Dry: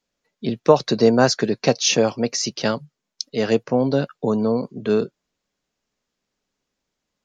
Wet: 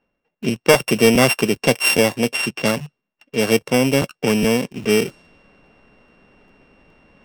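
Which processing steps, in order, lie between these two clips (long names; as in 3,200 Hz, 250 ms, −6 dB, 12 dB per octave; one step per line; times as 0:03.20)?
samples sorted by size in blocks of 16 samples
soft clipping −6.5 dBFS, distortion −17 dB
reversed playback
upward compression, threshold −27 dBFS
reversed playback
low-pass that shuts in the quiet parts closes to 2,300 Hz, open at −17.5 dBFS
in parallel at −7 dB: bit reduction 6 bits
on the sum: regular buffer underruns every 0.41 s, samples 512, repeat, from 0:00.32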